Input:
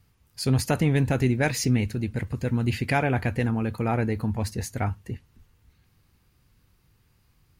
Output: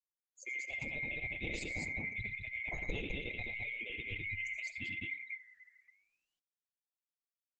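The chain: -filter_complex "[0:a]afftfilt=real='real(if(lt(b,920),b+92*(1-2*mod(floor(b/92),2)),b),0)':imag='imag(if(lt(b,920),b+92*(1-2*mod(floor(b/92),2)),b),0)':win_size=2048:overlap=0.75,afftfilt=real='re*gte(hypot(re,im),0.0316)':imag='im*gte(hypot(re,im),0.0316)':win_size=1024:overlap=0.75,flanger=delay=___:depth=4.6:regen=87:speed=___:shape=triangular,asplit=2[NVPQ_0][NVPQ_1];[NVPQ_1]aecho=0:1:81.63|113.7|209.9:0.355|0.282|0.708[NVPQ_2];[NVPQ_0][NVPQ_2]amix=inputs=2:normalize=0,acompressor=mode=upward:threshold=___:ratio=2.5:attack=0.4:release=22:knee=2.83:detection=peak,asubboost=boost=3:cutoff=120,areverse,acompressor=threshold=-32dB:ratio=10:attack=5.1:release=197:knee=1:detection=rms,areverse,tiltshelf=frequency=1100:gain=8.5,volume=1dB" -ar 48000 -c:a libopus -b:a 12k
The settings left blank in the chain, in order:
6.9, 0.8, -42dB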